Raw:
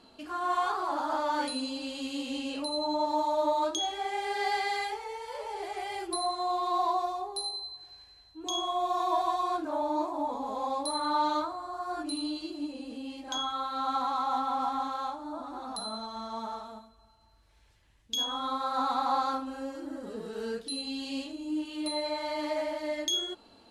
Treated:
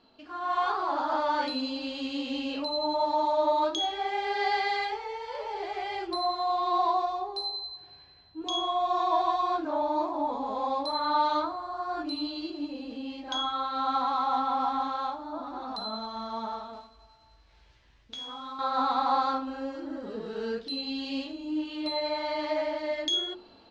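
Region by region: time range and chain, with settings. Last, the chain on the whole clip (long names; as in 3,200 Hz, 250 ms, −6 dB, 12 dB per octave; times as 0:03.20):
0:07.80–0:08.42: band-pass filter 120–4,000 Hz + low-shelf EQ 290 Hz +10.5 dB
0:16.73–0:18.59: variable-slope delta modulation 64 kbit/s + double-tracking delay 16 ms −3 dB + downward compressor 4 to 1, threshold −41 dBFS
whole clip: low-pass filter 5,200 Hz 24 dB per octave; mains-hum notches 60/120/180/240/300/360 Hz; automatic gain control gain up to 7.5 dB; level −5 dB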